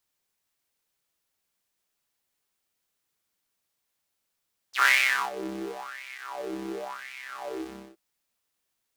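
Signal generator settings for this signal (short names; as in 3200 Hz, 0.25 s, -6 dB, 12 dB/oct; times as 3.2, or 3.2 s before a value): synth patch with filter wobble C2, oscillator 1 square, interval +19 st, oscillator 2 level -4 dB, noise -28.5 dB, filter highpass, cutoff 350 Hz, Q 7, filter envelope 4 oct, filter decay 0.06 s, filter sustain 30%, attack 0.144 s, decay 0.43 s, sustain -22.5 dB, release 0.33 s, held 2.90 s, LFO 0.93 Hz, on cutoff 1.5 oct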